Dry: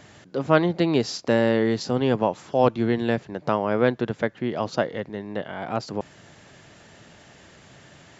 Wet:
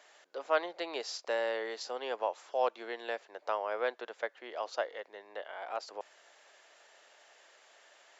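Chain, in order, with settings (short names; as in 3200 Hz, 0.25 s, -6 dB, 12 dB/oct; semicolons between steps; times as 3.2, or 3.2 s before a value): HPF 510 Hz 24 dB/oct; gain -8.5 dB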